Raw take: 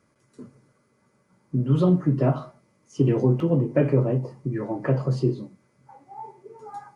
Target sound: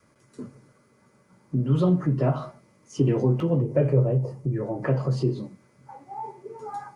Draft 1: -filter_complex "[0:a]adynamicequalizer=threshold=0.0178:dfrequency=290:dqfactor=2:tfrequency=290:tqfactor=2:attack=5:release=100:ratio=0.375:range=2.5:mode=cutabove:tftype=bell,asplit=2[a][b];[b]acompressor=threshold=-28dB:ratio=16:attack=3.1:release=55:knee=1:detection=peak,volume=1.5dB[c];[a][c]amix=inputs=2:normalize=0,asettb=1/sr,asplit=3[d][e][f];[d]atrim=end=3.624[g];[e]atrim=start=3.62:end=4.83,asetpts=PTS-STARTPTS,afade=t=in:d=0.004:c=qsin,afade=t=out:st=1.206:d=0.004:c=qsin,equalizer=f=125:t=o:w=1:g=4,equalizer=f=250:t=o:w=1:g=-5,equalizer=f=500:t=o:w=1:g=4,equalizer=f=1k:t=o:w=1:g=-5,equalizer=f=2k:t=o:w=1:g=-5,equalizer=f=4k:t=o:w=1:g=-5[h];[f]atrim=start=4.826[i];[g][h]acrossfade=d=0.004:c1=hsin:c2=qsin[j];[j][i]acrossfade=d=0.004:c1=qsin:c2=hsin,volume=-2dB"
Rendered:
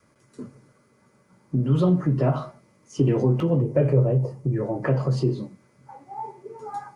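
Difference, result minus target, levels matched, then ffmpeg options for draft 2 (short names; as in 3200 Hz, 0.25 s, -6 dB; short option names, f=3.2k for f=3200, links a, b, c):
compressor: peak gain reduction -7.5 dB
-filter_complex "[0:a]adynamicequalizer=threshold=0.0178:dfrequency=290:dqfactor=2:tfrequency=290:tqfactor=2:attack=5:release=100:ratio=0.375:range=2.5:mode=cutabove:tftype=bell,asplit=2[a][b];[b]acompressor=threshold=-36dB:ratio=16:attack=3.1:release=55:knee=1:detection=peak,volume=1.5dB[c];[a][c]amix=inputs=2:normalize=0,asettb=1/sr,asplit=3[d][e][f];[d]atrim=end=3.624[g];[e]atrim=start=3.62:end=4.83,asetpts=PTS-STARTPTS,afade=t=in:d=0.004:c=qsin,afade=t=out:st=1.206:d=0.004:c=qsin,equalizer=f=125:t=o:w=1:g=4,equalizer=f=250:t=o:w=1:g=-5,equalizer=f=500:t=o:w=1:g=4,equalizer=f=1k:t=o:w=1:g=-5,equalizer=f=2k:t=o:w=1:g=-5,equalizer=f=4k:t=o:w=1:g=-5[h];[f]atrim=start=4.826[i];[g][h]acrossfade=d=0.004:c1=hsin:c2=qsin[j];[j][i]acrossfade=d=0.004:c1=qsin:c2=hsin,volume=-2dB"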